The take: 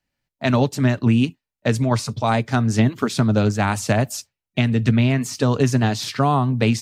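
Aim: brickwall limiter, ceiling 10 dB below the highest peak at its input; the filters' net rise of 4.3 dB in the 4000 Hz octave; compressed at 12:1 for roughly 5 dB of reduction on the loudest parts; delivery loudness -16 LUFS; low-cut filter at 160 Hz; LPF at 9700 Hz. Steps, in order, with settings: HPF 160 Hz; LPF 9700 Hz; bell 4000 Hz +5.5 dB; compressor 12:1, threshold -19 dBFS; gain +10.5 dB; limiter -5 dBFS

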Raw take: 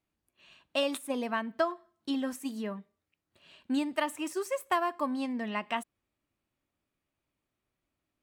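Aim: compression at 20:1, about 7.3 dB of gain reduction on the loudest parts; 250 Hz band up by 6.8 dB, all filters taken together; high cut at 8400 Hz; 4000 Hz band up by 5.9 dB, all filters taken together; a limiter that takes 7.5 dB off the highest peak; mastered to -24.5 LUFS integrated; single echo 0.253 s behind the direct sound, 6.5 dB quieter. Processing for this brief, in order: LPF 8400 Hz; bell 250 Hz +7.5 dB; bell 4000 Hz +8.5 dB; compressor 20:1, threshold -26 dBFS; limiter -23.5 dBFS; echo 0.253 s -6.5 dB; gain +8.5 dB

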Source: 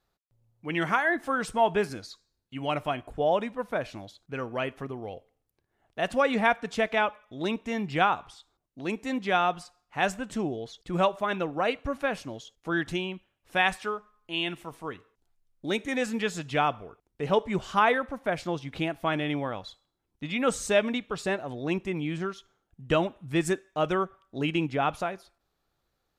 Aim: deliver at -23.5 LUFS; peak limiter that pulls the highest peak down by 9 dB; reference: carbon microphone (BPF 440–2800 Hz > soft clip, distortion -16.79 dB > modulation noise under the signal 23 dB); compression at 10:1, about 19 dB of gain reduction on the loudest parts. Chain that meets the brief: compressor 10:1, threshold -38 dBFS; limiter -34 dBFS; BPF 440–2800 Hz; soft clip -38.5 dBFS; modulation noise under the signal 23 dB; gain +27 dB

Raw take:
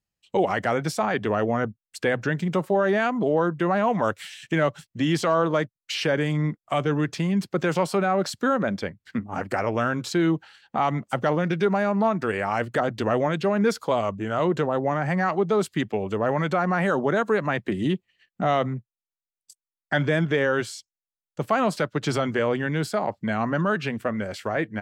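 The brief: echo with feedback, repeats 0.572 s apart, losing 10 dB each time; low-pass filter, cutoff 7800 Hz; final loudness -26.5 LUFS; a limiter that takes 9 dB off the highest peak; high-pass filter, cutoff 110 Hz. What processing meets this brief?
HPF 110 Hz; LPF 7800 Hz; limiter -19 dBFS; feedback echo 0.572 s, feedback 32%, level -10 dB; gain +2.5 dB

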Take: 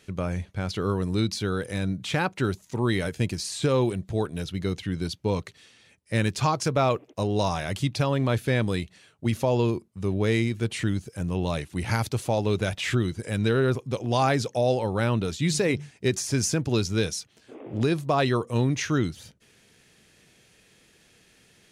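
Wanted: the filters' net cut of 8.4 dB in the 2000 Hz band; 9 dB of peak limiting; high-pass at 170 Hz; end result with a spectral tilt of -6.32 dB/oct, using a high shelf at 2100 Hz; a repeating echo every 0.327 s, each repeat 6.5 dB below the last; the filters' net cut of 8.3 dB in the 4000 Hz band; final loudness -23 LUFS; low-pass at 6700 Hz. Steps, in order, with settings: HPF 170 Hz; LPF 6700 Hz; bell 2000 Hz -8 dB; high shelf 2100 Hz -4 dB; bell 4000 Hz -3.5 dB; limiter -21 dBFS; feedback echo 0.327 s, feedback 47%, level -6.5 dB; gain +9 dB

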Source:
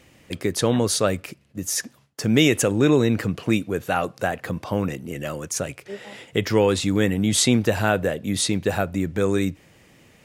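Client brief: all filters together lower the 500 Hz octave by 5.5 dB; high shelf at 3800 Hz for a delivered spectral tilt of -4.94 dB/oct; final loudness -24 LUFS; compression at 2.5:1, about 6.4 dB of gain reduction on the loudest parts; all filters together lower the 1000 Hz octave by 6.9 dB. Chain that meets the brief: bell 500 Hz -5 dB; bell 1000 Hz -7.5 dB; high shelf 3800 Hz -7.5 dB; compressor 2.5:1, threshold -25 dBFS; gain +6 dB

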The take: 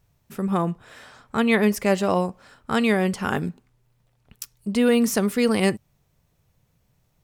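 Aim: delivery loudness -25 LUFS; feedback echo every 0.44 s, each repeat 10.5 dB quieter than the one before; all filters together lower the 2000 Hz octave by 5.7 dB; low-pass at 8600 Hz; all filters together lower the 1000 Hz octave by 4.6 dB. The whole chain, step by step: LPF 8600 Hz; bell 1000 Hz -5 dB; bell 2000 Hz -5.5 dB; feedback echo 0.44 s, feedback 30%, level -10.5 dB; gain -1 dB

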